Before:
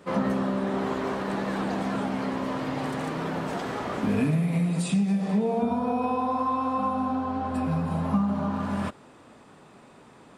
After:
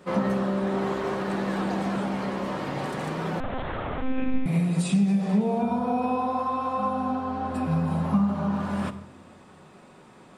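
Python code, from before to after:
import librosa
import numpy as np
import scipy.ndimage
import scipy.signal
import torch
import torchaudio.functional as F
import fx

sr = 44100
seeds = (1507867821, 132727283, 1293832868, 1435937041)

y = fx.room_shoebox(x, sr, seeds[0], volume_m3=2800.0, walls='furnished', distance_m=1.0)
y = fx.lpc_monotone(y, sr, seeds[1], pitch_hz=260.0, order=10, at=(3.4, 4.46))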